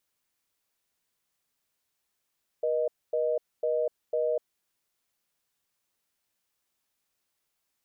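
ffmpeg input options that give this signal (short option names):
-f lavfi -i "aevalsrc='0.0447*(sin(2*PI*480*t)+sin(2*PI*620*t))*clip(min(mod(t,0.5),0.25-mod(t,0.5))/0.005,0,1)':d=1.76:s=44100"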